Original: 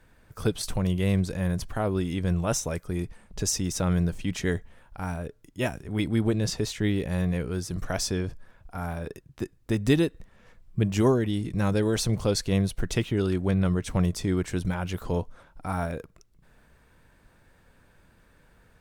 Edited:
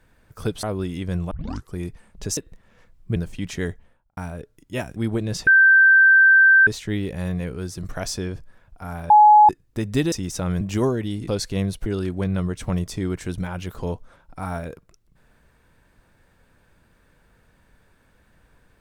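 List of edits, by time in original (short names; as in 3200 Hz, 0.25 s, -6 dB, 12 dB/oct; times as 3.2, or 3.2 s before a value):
0.63–1.79 cut
2.47 tape start 0.42 s
3.53–4.02 swap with 10.05–10.84
4.53–5.03 studio fade out
5.82–6.09 cut
6.6 add tone 1560 Hz -9.5 dBFS 1.20 s
9.03–9.42 bleep 844 Hz -7.5 dBFS
11.51–12.24 cut
12.82–13.13 cut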